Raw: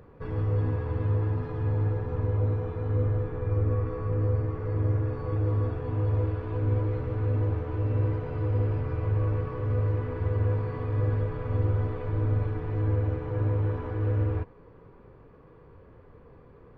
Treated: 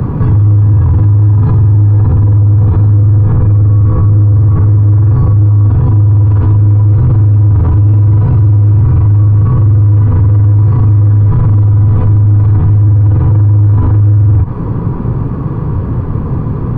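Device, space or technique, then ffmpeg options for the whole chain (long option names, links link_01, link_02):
mastering chain: -filter_complex "[0:a]equalizer=frequency=125:width_type=o:width=1:gain=8,equalizer=frequency=250:width_type=o:width=1:gain=5,equalizer=frequency=500:width_type=o:width=1:gain=-10,equalizer=frequency=1000:width_type=o:width=1:gain=7,equalizer=frequency=2000:width_type=o:width=1:gain=-5,equalizer=frequency=1000:width_type=o:width=0.77:gain=-1.5,acrossover=split=160|460[link_01][link_02][link_03];[link_01]acompressor=threshold=-23dB:ratio=4[link_04];[link_02]acompressor=threshold=-47dB:ratio=4[link_05];[link_03]acompressor=threshold=-45dB:ratio=4[link_06];[link_04][link_05][link_06]amix=inputs=3:normalize=0,acompressor=threshold=-28dB:ratio=2.5,asoftclip=type=tanh:threshold=-25.5dB,tiltshelf=frequency=720:gain=5,alimiter=level_in=32.5dB:limit=-1dB:release=50:level=0:latency=1,volume=-2dB"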